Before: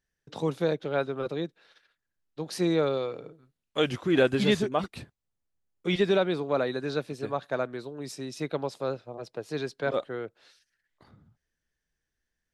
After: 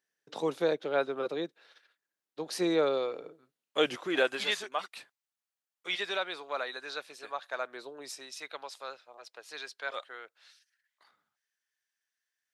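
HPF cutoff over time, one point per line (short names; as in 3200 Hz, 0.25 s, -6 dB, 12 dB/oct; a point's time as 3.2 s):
3.83 s 330 Hz
4.54 s 1000 Hz
7.55 s 1000 Hz
7.9 s 480 Hz
8.41 s 1200 Hz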